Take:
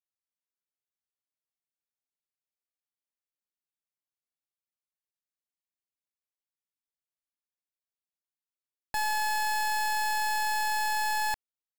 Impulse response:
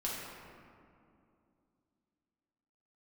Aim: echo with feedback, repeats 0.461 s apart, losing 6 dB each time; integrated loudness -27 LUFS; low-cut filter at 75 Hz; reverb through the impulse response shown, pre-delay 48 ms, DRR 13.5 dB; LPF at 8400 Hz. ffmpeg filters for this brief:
-filter_complex "[0:a]highpass=75,lowpass=8.4k,aecho=1:1:461|922|1383|1844|2305|2766:0.501|0.251|0.125|0.0626|0.0313|0.0157,asplit=2[a][b];[1:a]atrim=start_sample=2205,adelay=48[c];[b][c]afir=irnorm=-1:irlink=0,volume=-17dB[d];[a][d]amix=inputs=2:normalize=0,volume=2dB"

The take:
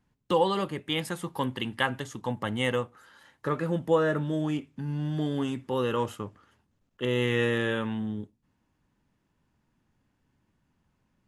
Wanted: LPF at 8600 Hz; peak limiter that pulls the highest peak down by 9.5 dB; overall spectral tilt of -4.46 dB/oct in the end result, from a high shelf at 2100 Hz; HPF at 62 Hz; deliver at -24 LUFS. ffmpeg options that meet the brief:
-af "highpass=62,lowpass=8.6k,highshelf=f=2.1k:g=4,volume=7dB,alimiter=limit=-11dB:level=0:latency=1"

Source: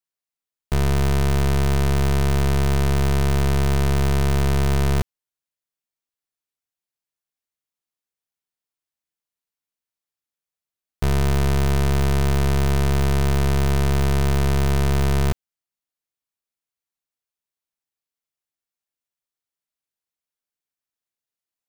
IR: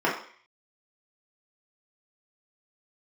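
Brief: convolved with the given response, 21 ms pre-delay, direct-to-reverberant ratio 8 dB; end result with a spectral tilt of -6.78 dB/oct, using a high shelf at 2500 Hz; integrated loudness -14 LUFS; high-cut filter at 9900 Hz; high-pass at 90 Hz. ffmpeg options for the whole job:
-filter_complex "[0:a]highpass=90,lowpass=9.9k,highshelf=f=2.5k:g=-9,asplit=2[a][b];[1:a]atrim=start_sample=2205,adelay=21[c];[b][c]afir=irnorm=-1:irlink=0,volume=-23.5dB[d];[a][d]amix=inputs=2:normalize=0,volume=9.5dB"

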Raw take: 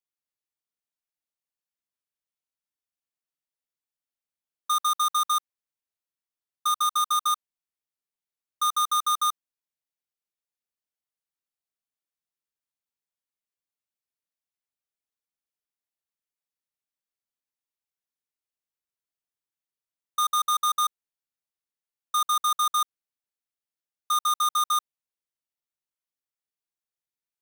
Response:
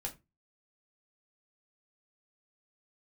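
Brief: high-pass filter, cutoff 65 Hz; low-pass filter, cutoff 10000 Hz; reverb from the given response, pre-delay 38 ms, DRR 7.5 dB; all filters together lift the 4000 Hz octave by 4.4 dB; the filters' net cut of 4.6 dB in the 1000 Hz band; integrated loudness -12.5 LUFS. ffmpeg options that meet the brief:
-filter_complex "[0:a]highpass=65,lowpass=10k,equalizer=f=1k:t=o:g=-6.5,equalizer=f=4k:t=o:g=5,asplit=2[a][b];[1:a]atrim=start_sample=2205,adelay=38[c];[b][c]afir=irnorm=-1:irlink=0,volume=-7dB[d];[a][d]amix=inputs=2:normalize=0,volume=12.5dB"

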